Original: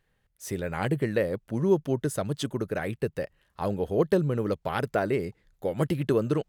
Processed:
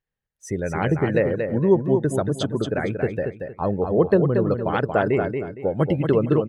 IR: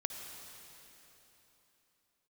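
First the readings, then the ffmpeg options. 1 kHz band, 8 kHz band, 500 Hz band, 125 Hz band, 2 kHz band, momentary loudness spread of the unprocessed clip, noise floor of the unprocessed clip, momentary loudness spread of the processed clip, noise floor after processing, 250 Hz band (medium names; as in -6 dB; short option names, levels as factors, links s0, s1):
+6.5 dB, +0.5 dB, +6.5 dB, +6.5 dB, +5.5 dB, 9 LU, -72 dBFS, 8 LU, -85 dBFS, +6.5 dB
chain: -af "afftdn=nr=21:nf=-40,highshelf=f=9500:g=-7.5,aecho=1:1:231|462|693|924:0.501|0.14|0.0393|0.011,volume=1.88"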